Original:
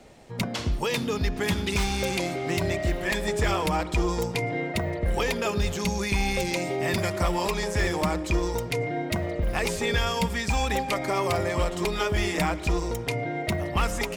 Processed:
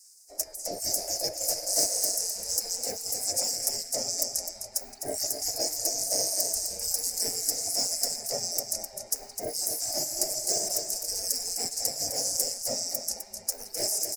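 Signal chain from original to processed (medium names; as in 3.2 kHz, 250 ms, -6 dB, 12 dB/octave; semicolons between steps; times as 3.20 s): spectral gate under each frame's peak -25 dB weak; FFT filter 290 Hz 0 dB, 660 Hz +9 dB, 1.1 kHz -24 dB, 2.1 kHz -14 dB, 3.4 kHz -28 dB, 5 kHz +7 dB; on a send: delay 256 ms -8 dB; on the sum: trim +7 dB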